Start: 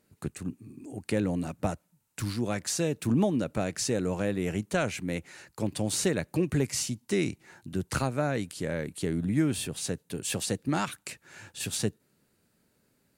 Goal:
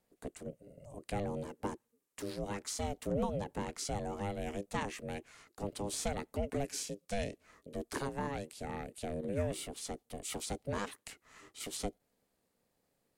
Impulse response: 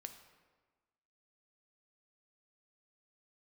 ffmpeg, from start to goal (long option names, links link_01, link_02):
-af "afreqshift=-59,aeval=exprs='val(0)*sin(2*PI*350*n/s)':channel_layout=same,volume=-6dB"